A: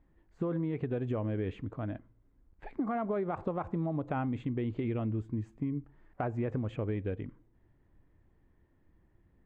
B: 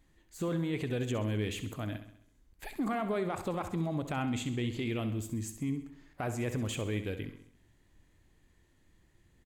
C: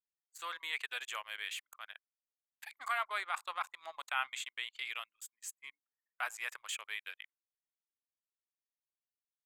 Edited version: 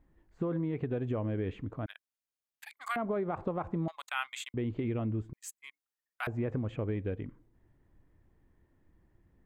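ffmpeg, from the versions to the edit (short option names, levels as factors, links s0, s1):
-filter_complex "[2:a]asplit=3[s0][s1][s2];[0:a]asplit=4[s3][s4][s5][s6];[s3]atrim=end=1.862[s7];[s0]atrim=start=1.858:end=2.962[s8];[s4]atrim=start=2.958:end=3.882[s9];[s1]atrim=start=3.878:end=4.542[s10];[s5]atrim=start=4.538:end=5.332[s11];[s2]atrim=start=5.328:end=6.272[s12];[s6]atrim=start=6.268[s13];[s7][s8]acrossfade=d=0.004:c1=hsin:c2=hsin[s14];[s14][s9]acrossfade=d=0.004:c1=hsin:c2=hsin[s15];[s15][s10]acrossfade=d=0.004:c1=hsin:c2=hsin[s16];[s16][s11]acrossfade=d=0.004:c1=hsin:c2=hsin[s17];[s17][s12]acrossfade=d=0.004:c1=hsin:c2=hsin[s18];[s18][s13]acrossfade=d=0.004:c1=hsin:c2=hsin"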